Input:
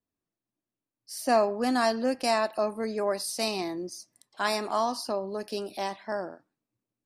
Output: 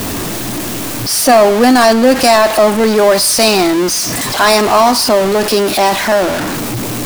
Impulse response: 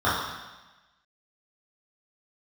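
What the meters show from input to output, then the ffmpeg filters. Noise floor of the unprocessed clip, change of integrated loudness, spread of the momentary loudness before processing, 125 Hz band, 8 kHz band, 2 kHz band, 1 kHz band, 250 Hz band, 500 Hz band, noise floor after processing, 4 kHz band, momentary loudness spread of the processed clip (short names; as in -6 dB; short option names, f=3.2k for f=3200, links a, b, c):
under -85 dBFS, +18.0 dB, 10 LU, +24.5 dB, +24.0 dB, +19.5 dB, +18.0 dB, +19.5 dB, +18.5 dB, -20 dBFS, +21.0 dB, 11 LU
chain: -filter_complex "[0:a]aeval=exprs='val(0)+0.5*0.0398*sgn(val(0))':c=same,asplit=2[a][b];[1:a]atrim=start_sample=2205[c];[b][c]afir=irnorm=-1:irlink=0,volume=-41.5dB[d];[a][d]amix=inputs=2:normalize=0,apsyclip=18dB,volume=-1.5dB"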